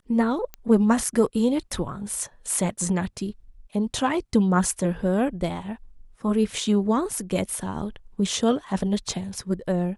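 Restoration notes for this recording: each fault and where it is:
0.54 s: pop -19 dBFS

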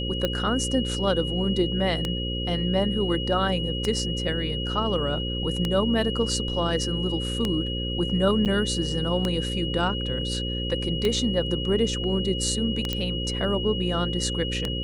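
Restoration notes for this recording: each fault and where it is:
buzz 60 Hz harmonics 9 -30 dBFS
tick 33 1/3 rpm -11 dBFS
whine 2.9 kHz -31 dBFS
8.45–8.46 s: dropout 8.4 ms
12.93 s: pop -12 dBFS

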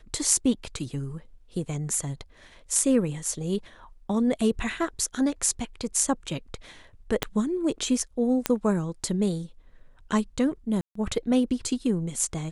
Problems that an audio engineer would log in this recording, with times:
7.23 s: pop -9 dBFS
8.46 s: pop -6 dBFS
10.81–10.95 s: dropout 144 ms

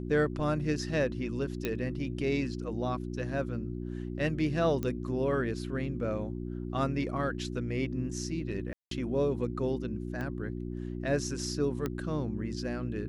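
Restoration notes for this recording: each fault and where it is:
hum 60 Hz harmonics 6 -37 dBFS
1.65 s: pop -17 dBFS
4.83 s: pop -20 dBFS
8.73–8.91 s: dropout 183 ms
10.21 s: pop -25 dBFS
11.86 s: pop -19 dBFS

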